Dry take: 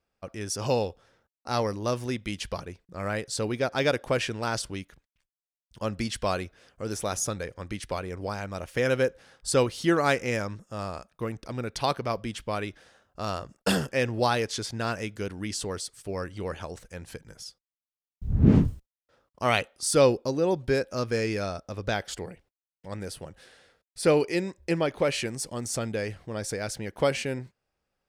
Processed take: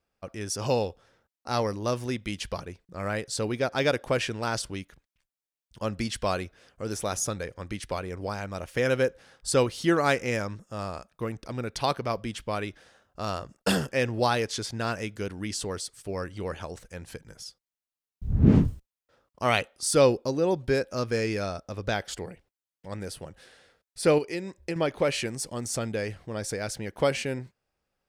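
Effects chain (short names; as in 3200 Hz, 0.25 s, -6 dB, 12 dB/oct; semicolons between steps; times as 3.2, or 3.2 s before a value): 24.18–24.76 compressor 5:1, threshold -29 dBFS, peak gain reduction 8 dB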